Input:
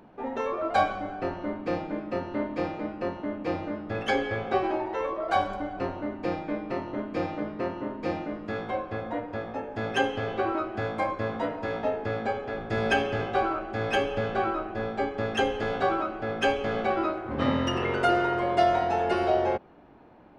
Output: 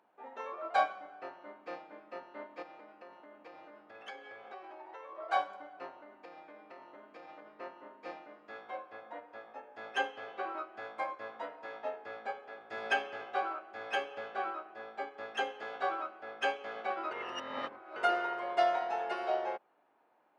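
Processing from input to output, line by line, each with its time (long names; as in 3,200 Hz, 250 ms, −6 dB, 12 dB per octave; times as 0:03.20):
0:02.62–0:05.15: downward compressor 5 to 1, threshold −30 dBFS
0:06.01–0:07.47: downward compressor, threshold −29 dBFS
0:17.11–0:17.96: reverse
whole clip: high-pass filter 810 Hz 12 dB per octave; spectral tilt −2 dB per octave; expander for the loud parts 1.5 to 1, over −41 dBFS; level −1.5 dB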